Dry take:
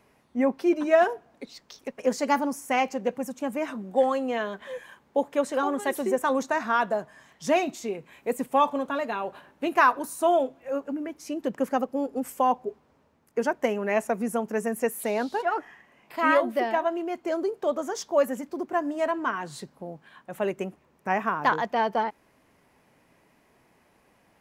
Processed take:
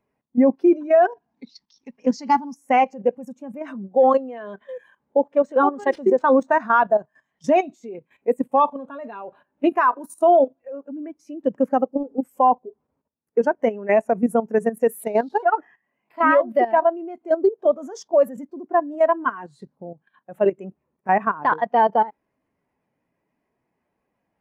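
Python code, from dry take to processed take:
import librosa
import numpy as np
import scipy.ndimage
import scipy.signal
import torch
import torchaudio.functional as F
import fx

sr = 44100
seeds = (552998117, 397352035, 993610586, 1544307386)

y = fx.curve_eq(x, sr, hz=(130.0, 230.0, 590.0, 880.0, 1300.0, 5600.0, 8700.0), db=(0, 2, -9, 2, -2, 7, -7), at=(1.11, 2.56))
y = fx.resample_linear(y, sr, factor=3, at=(5.21, 6.51))
y = fx.level_steps(y, sr, step_db=13)
y = fx.spectral_expand(y, sr, expansion=1.5)
y = y * librosa.db_to_amplitude(8.5)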